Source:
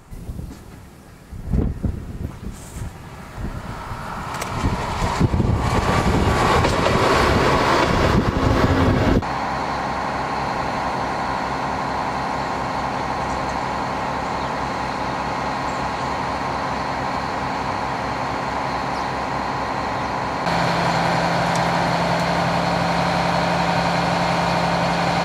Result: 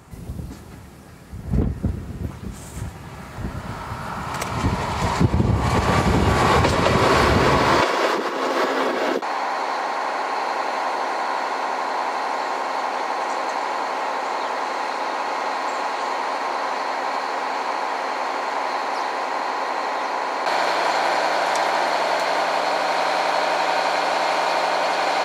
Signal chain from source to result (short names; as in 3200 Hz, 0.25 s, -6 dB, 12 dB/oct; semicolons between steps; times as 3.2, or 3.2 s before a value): HPF 51 Hz 24 dB/oct, from 7.81 s 340 Hz